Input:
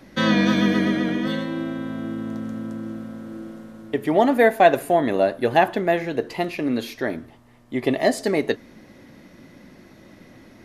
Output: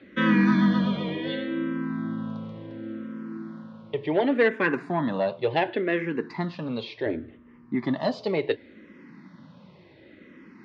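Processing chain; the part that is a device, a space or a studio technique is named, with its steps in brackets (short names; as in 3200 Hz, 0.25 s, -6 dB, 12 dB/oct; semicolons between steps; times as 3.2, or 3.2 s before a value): 7.06–7.75 tilt -2.5 dB/oct; barber-pole phaser into a guitar amplifier (endless phaser -0.69 Hz; soft clip -11.5 dBFS, distortion -19 dB; speaker cabinet 110–4100 Hz, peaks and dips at 170 Hz +5 dB, 700 Hz -8 dB, 1000 Hz +4 dB)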